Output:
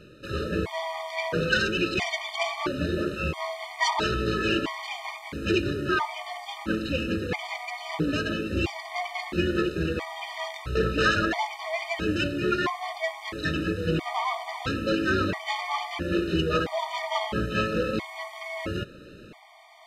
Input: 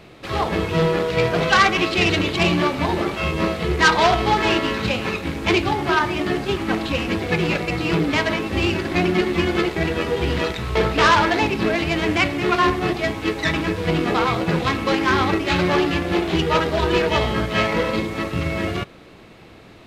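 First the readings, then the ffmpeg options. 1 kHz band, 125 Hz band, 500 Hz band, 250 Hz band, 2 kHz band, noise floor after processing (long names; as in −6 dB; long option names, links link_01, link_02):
−9.5 dB, −8.0 dB, −8.0 dB, −7.5 dB, −7.5 dB, −46 dBFS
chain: -af "areverse,acompressor=mode=upward:threshold=-34dB:ratio=2.5,areverse,afftfilt=real='re*gt(sin(2*PI*0.75*pts/sr)*(1-2*mod(floor(b*sr/1024/610),2)),0)':imag='im*gt(sin(2*PI*0.75*pts/sr)*(1-2*mod(floor(b*sr/1024/610),2)),0)':win_size=1024:overlap=0.75,volume=-4.5dB"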